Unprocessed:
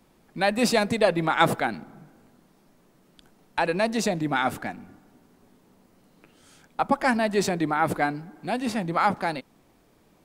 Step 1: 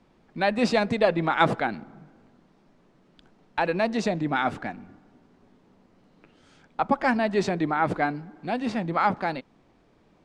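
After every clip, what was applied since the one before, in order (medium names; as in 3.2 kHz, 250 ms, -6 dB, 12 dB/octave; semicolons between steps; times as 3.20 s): distance through air 120 m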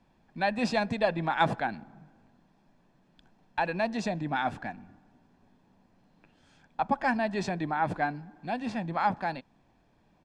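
comb 1.2 ms, depth 43%; trim -5.5 dB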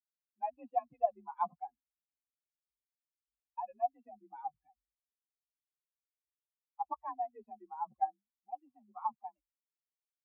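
expander on every frequency bin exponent 3; frequency shift +43 Hz; cascade formant filter a; trim +6 dB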